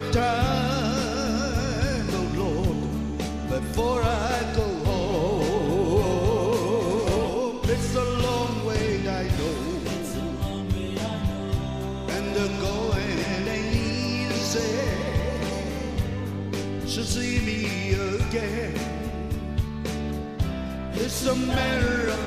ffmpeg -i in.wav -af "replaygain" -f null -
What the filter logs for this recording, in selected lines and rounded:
track_gain = +8.2 dB
track_peak = 0.253